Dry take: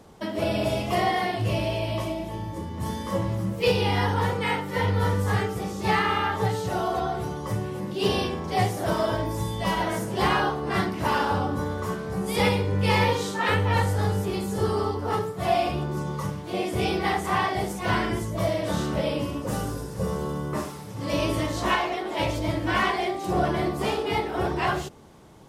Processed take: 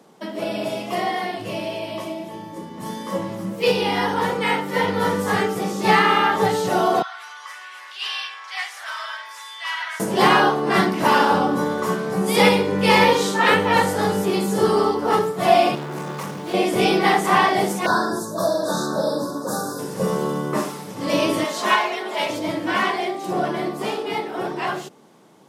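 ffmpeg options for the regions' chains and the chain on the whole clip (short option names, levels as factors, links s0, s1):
-filter_complex "[0:a]asettb=1/sr,asplit=3[s0][s1][s2];[s0]atrim=end=7.024[s3];[s1]atrim=start=7.02:end=10,asetpts=PTS-STARTPTS,afade=t=in:d=0.004:c=qsin,afade=t=out:st=2.976:d=0.004:c=qsin,highpass=f=1400:w=0.5412,highpass=f=1400:w=1.3066,aemphasis=mode=reproduction:type=75fm,acompressor=mode=upward:threshold=0.01:ratio=2.5:attack=3.2:release=140:knee=2.83:detection=peak[s4];[s2]atrim=start=9.996[s5];[s3][s4]acrossfade=d=0.004:c1=hsin:c2=qsin[s6];[s6][s5]acrossfade=d=0.004:c1=qsin:c2=hsin,asettb=1/sr,asplit=3[s7][s8][s9];[s7]atrim=end=15.754[s10];[s8]atrim=start=15.75:end=16.54,asetpts=PTS-STARTPTS,afade=t=in:d=0.004:c=qsin,afade=t=out:st=0.786:d=0.004:c=qsin,asoftclip=type=hard:threshold=0.0224,acrusher=bits=7:mode=log:mix=0:aa=0.000001[s11];[s9]atrim=start=16.536[s12];[s10][s11]acrossfade=d=0.004:c1=hsin:c2=qsin[s13];[s13][s12]acrossfade=d=0.004:c1=qsin:c2=hsin,asettb=1/sr,asplit=3[s14][s15][s16];[s14]atrim=end=17.864[s17];[s15]atrim=start=17.86:end=19.79,asetpts=PTS-STARTPTS,afade=t=in:d=0.004:c=qsin,afade=t=out:st=1.926:d=0.004:c=qsin,asuperstop=centerf=2500:order=20:qfactor=1.3,lowshelf=f=480:g=-7[s18];[s16]atrim=start=19.786[s19];[s17][s18]acrossfade=d=0.004:c1=hsin:c2=qsin[s20];[s20][s19]acrossfade=d=0.004:c1=qsin:c2=hsin,asettb=1/sr,asplit=3[s21][s22][s23];[s21]atrim=end=21.444[s24];[s22]atrim=start=21.44:end=22.3,asetpts=PTS-STARTPTS,afade=t=in:d=0.004:c=qsin,afade=t=out:st=0.856:d=0.004:c=qsin,highpass=f=550:p=1,aecho=1:1:4.8:0.62,atrim=end_sample=37926[s25];[s23]atrim=start=22.296[s26];[s24][s25]acrossfade=d=0.004:c1=hsin:c2=qsin[s27];[s27][s26]acrossfade=d=0.004:c1=qsin:c2=hsin,highpass=f=170:w=0.5412,highpass=f=170:w=1.3066,dynaudnorm=f=430:g=21:m=3.76"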